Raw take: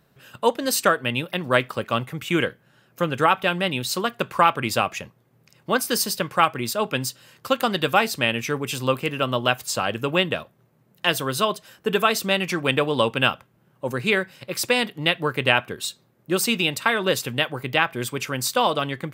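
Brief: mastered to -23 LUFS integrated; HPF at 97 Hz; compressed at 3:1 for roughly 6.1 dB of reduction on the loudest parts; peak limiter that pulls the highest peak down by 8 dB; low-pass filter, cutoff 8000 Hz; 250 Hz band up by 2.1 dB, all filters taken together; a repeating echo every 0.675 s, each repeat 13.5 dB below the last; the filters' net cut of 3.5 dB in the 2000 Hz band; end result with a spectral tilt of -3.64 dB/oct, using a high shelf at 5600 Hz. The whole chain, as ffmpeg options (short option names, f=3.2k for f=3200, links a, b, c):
-af "highpass=97,lowpass=8k,equalizer=f=250:t=o:g=3,equalizer=f=2k:t=o:g=-6,highshelf=f=5.6k:g=6.5,acompressor=threshold=-22dB:ratio=3,alimiter=limit=-15.5dB:level=0:latency=1,aecho=1:1:675|1350:0.211|0.0444,volume=5.5dB"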